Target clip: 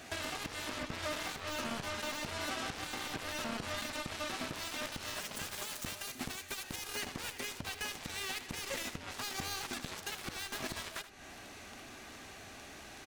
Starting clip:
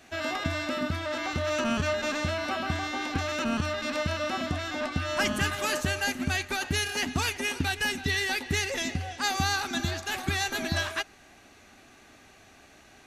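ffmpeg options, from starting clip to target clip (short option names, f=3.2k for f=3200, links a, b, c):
-filter_complex "[0:a]asettb=1/sr,asplit=3[a][b][c];[a]atrim=end=4.534[d];[b]atrim=start=4.53:end=6.76,asetpts=PTS-STARTPTS,afade=t=in:d=0.004:c=qsin,afade=t=out:st=2.226:d=0.004:c=qsin,highshelf=f=3.5k:g=10[e];[c]atrim=start=6.756[f];[d][e]acrossfade=d=0.004:c1=hsin:c2=qsin[g];[g][f]acrossfade=d=0.004:c1=qsin:c2=hsin,acompressor=threshold=-41dB:ratio=6,alimiter=level_in=11.5dB:limit=-24dB:level=0:latency=1:release=255,volume=-11.5dB,aeval=exprs='0.0178*(cos(1*acos(clip(val(0)/0.0178,-1,1)))-cos(1*PI/2))+0.00562*(cos(7*acos(clip(val(0)/0.0178,-1,1)))-cos(7*PI/2))':c=same,aecho=1:1:78:0.211,volume=6dB"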